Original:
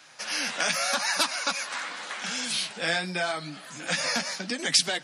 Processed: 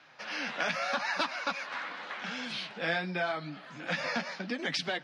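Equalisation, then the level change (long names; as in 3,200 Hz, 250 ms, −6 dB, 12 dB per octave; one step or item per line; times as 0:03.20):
high-frequency loss of the air 260 metres
−1.5 dB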